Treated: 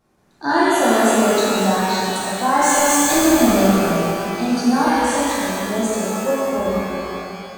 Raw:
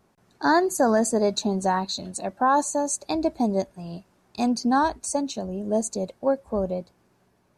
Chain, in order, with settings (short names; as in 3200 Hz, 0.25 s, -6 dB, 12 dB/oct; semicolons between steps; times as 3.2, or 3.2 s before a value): 2.6–3.88 power-law curve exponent 0.5; shimmer reverb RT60 2.7 s, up +12 st, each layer -8 dB, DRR -8.5 dB; gain -3.5 dB